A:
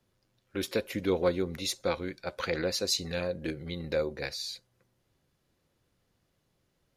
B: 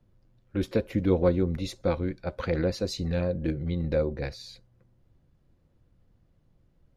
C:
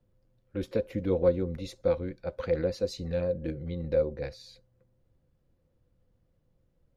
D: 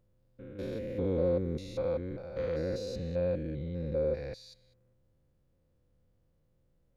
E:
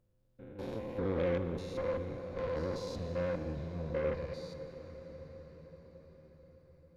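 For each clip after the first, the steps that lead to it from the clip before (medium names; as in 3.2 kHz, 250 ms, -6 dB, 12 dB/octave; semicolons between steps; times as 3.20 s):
tilt EQ -3.5 dB/octave; band-stop 400 Hz, Q 12
peaking EQ 510 Hz +10 dB 0.2 oct; trim -6 dB
spectrogram pixelated in time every 200 ms
Chebyshev shaper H 6 -20 dB, 8 -16 dB, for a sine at -18 dBFS; on a send at -8 dB: reverberation RT60 7.3 s, pre-delay 7 ms; on the sum: trim -3.5 dB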